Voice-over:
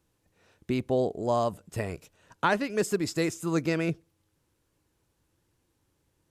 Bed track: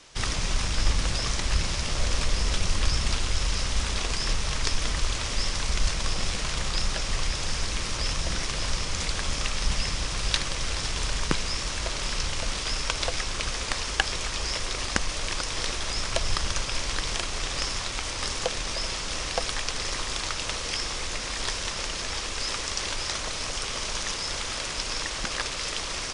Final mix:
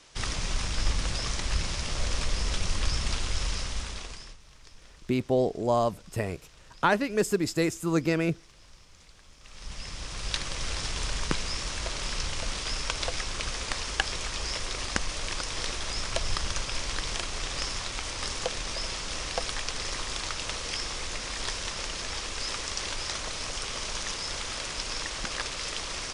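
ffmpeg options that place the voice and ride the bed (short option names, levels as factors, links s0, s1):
-filter_complex "[0:a]adelay=4400,volume=1.19[s0];[1:a]volume=9.44,afade=t=out:st=3.46:d=0.91:silence=0.0749894,afade=t=in:st=9.41:d=1.27:silence=0.0707946[s1];[s0][s1]amix=inputs=2:normalize=0"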